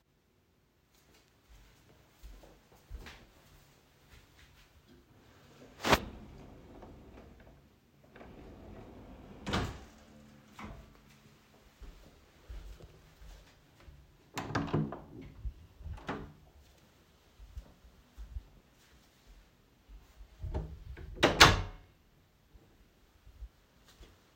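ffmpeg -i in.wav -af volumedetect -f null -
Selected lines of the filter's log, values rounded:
mean_volume: -39.3 dB
max_volume: -2.3 dB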